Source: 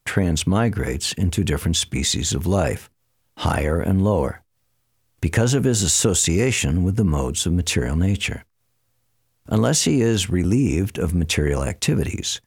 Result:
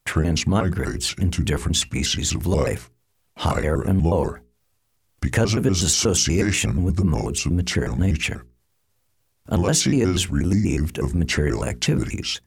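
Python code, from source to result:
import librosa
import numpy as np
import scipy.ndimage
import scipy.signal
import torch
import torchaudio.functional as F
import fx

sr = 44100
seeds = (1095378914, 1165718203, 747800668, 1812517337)

y = fx.pitch_trill(x, sr, semitones=-4.0, every_ms=121)
y = fx.hum_notches(y, sr, base_hz=60, count=7)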